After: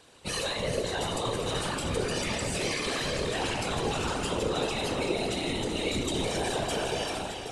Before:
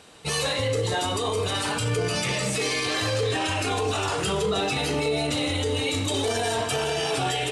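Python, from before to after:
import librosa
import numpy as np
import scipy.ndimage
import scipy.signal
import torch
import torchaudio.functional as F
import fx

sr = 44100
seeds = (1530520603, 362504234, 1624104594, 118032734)

y = fx.fade_out_tail(x, sr, length_s=0.52)
y = fx.echo_alternate(y, sr, ms=193, hz=1100.0, feedback_pct=75, wet_db=-5.5)
y = fx.whisperise(y, sr, seeds[0])
y = F.gain(torch.from_numpy(y), -6.0).numpy()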